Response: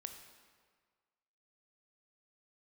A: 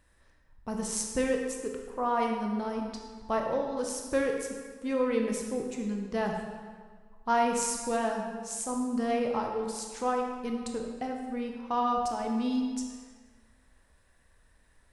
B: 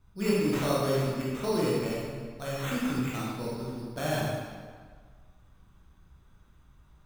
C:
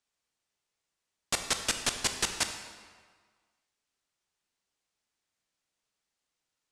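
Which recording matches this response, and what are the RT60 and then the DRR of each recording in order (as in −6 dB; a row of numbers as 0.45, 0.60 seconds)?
C; 1.7, 1.7, 1.7 seconds; 1.5, −7.0, 5.5 decibels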